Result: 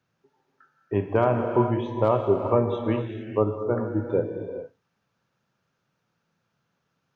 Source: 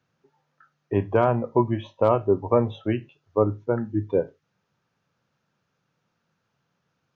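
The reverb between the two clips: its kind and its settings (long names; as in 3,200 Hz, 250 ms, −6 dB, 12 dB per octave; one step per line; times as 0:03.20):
reverb whose tail is shaped and stops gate 470 ms flat, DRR 4 dB
level −2 dB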